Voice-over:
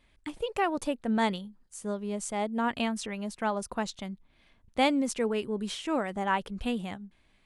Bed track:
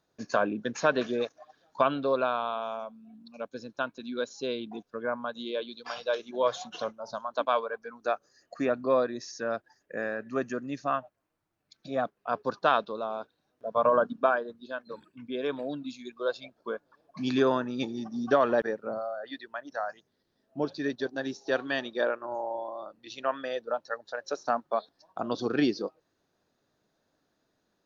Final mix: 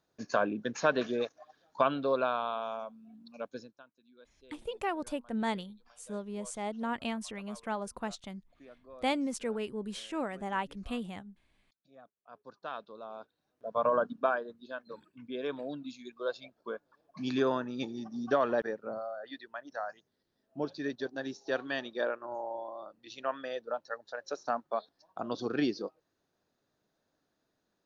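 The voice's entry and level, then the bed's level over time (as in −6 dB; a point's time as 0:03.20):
4.25 s, −5.5 dB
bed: 0:03.59 −2.5 dB
0:03.84 −26.5 dB
0:12.07 −26.5 dB
0:13.50 −4.5 dB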